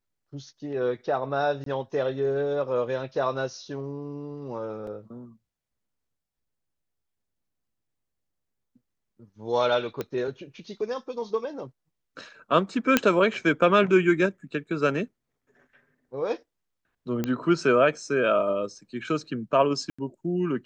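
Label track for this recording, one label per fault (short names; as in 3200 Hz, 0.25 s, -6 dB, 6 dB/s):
1.640000	1.660000	gap 23 ms
4.870000	4.870000	gap 2.8 ms
10.010000	10.010000	pop -17 dBFS
12.970000	12.970000	pop -4 dBFS
17.240000	17.240000	pop -14 dBFS
19.900000	19.980000	gap 85 ms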